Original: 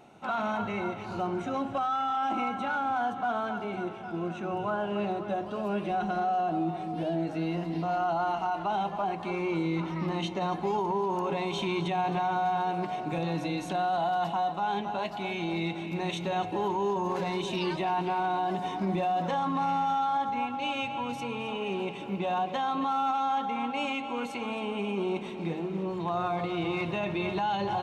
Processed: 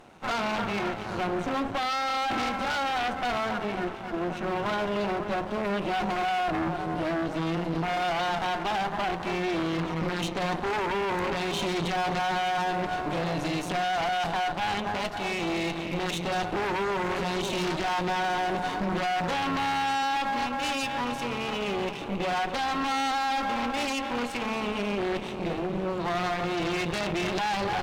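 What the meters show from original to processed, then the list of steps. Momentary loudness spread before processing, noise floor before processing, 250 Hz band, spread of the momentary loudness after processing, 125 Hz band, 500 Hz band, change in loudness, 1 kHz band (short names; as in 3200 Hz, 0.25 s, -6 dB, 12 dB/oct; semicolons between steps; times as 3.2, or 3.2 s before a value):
5 LU, -38 dBFS, +1.0 dB, 3 LU, +1.0 dB, +1.5 dB, +2.0 dB, +0.5 dB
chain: half-wave rectifier; added harmonics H 4 -6 dB, 6 -10 dB, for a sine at -18 dBFS; gain +6.5 dB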